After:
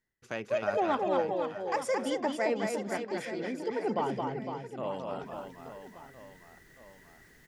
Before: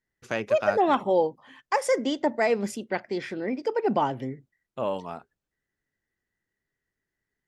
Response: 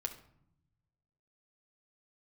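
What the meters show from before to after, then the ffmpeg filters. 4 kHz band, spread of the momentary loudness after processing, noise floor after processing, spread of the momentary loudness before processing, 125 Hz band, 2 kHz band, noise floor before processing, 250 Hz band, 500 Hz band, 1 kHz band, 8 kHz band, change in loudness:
-5.0 dB, 18 LU, -59 dBFS, 13 LU, -4.0 dB, -5.0 dB, under -85 dBFS, -5.0 dB, -5.5 dB, -5.5 dB, -4.5 dB, -6.0 dB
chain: -af "areverse,acompressor=mode=upward:threshold=-27dB:ratio=2.5,areverse,aecho=1:1:220|506|877.8|1361|1989:0.631|0.398|0.251|0.158|0.1,volume=-7.5dB"

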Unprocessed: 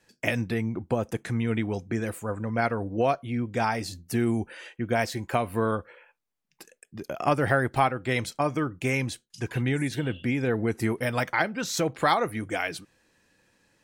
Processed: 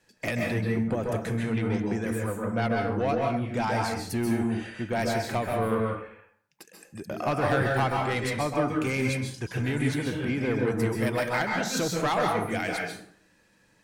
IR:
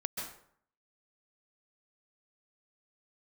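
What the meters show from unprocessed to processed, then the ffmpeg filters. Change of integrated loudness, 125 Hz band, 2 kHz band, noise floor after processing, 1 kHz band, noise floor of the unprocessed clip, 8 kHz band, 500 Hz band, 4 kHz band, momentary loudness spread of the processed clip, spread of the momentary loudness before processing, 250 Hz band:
0.0 dB, +0.5 dB, -0.5 dB, -64 dBFS, -1.0 dB, -75 dBFS, +0.5 dB, +0.5 dB, 0.0 dB, 6 LU, 8 LU, +0.5 dB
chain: -filter_complex "[0:a]asoftclip=type=tanh:threshold=-20dB[a];[1:a]atrim=start_sample=2205[b];[a][b]afir=irnorm=-1:irlink=0"

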